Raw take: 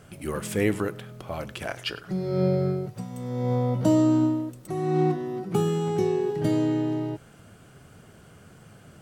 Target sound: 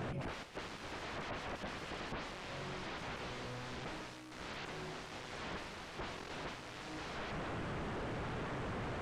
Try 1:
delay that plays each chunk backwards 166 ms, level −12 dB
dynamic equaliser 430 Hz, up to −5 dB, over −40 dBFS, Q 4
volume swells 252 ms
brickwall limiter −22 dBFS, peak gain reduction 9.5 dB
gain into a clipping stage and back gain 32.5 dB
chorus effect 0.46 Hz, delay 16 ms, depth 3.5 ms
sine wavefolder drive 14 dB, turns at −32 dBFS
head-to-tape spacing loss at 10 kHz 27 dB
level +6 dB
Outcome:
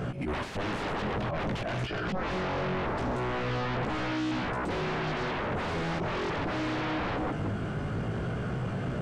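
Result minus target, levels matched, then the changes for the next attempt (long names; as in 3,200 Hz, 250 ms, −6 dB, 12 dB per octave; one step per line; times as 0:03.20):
sine wavefolder: distortion −27 dB
change: sine wavefolder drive 14 dB, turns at −41.5 dBFS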